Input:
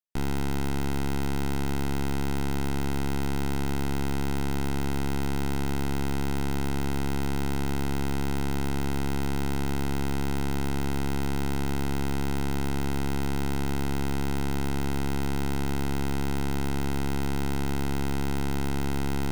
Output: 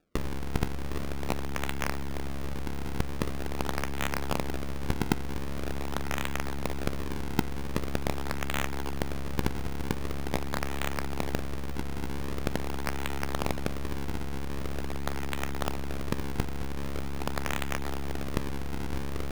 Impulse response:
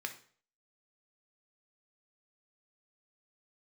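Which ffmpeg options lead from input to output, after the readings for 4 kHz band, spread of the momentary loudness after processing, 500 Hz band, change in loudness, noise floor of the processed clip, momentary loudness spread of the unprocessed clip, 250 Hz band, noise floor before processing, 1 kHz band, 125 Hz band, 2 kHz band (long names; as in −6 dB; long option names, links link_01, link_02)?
−1.5 dB, 4 LU, −2.0 dB, −4.0 dB, −31 dBFS, 0 LU, −6.0 dB, −26 dBFS, −2.5 dB, −5.5 dB, −0.5 dB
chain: -filter_complex "[0:a]acrossover=split=110|580[link_01][link_02][link_03];[link_01]acompressor=threshold=-31dB:ratio=4[link_04];[link_02]acompressor=threshold=-42dB:ratio=4[link_05];[link_03]acompressor=threshold=-43dB:ratio=4[link_06];[link_04][link_05][link_06]amix=inputs=3:normalize=0,aemphasis=mode=production:type=75fm,acrusher=samples=42:mix=1:aa=0.000001:lfo=1:lforange=67.2:lforate=0.44,asplit=2[link_07][link_08];[1:a]atrim=start_sample=2205[link_09];[link_08][link_09]afir=irnorm=-1:irlink=0,volume=-11dB[link_10];[link_07][link_10]amix=inputs=2:normalize=0,volume=1.5dB"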